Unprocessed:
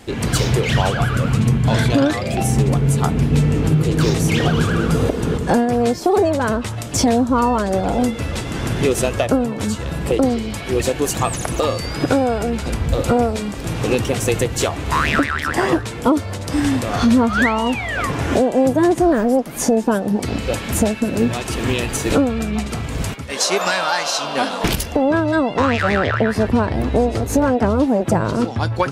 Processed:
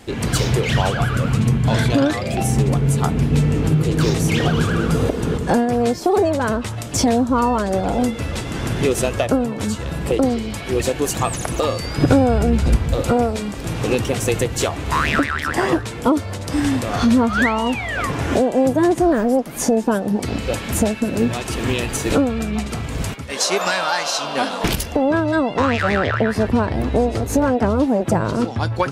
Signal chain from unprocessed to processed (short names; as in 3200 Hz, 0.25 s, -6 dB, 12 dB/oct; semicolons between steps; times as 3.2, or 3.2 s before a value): 11.98–12.77 low shelf 220 Hz +11.5 dB; gain -1 dB